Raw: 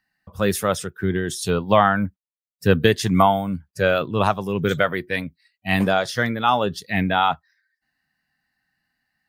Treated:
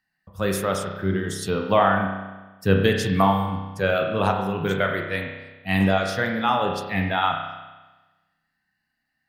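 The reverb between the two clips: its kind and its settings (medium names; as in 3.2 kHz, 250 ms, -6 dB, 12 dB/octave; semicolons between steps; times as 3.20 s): spring tank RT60 1.2 s, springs 31 ms, chirp 20 ms, DRR 2 dB; trim -4 dB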